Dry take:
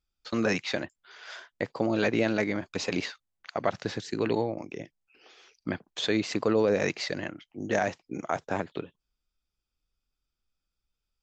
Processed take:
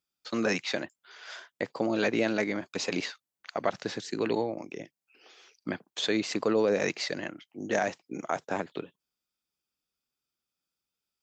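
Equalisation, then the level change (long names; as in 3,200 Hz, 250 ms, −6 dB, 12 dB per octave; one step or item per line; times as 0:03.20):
high-pass filter 160 Hz 12 dB per octave
high-shelf EQ 7,100 Hz +6 dB
−1.0 dB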